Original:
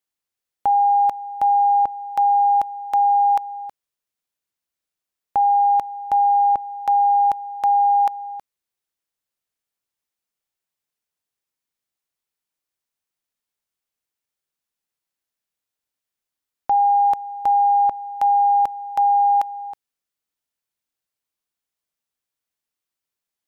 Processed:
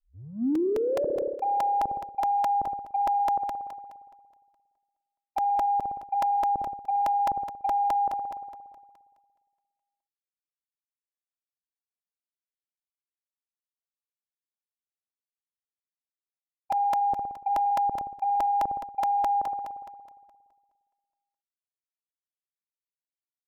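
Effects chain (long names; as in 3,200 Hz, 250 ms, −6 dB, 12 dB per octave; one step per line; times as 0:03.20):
turntable start at the beginning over 1.43 s
automatic gain control gain up to 7 dB
noise gate −11 dBFS, range −55 dB
in parallel at −9 dB: soft clipping −18.5 dBFS, distortion −10 dB
on the sum: treble cut that deepens with the level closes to 450 Hz, closed at −11 dBFS
high-frequency loss of the air 400 metres
spring reverb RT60 1.7 s, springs 58 ms, chirp 55 ms, DRR 9.5 dB
dynamic equaliser 190 Hz, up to +4 dB, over −32 dBFS, Q 1.1
reversed playback
downward compressor 5 to 1, threshold −26 dBFS, peak gain reduction 15 dB
reversed playback
brickwall limiter −26.5 dBFS, peak gain reduction 9 dB
regular buffer underruns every 0.21 s, samples 128, repeat, from 0:00.55
level +5.5 dB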